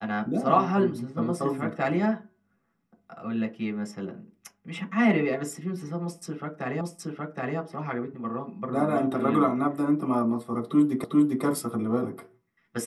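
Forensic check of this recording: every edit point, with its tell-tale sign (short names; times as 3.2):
6.81 repeat of the last 0.77 s
11.04 repeat of the last 0.4 s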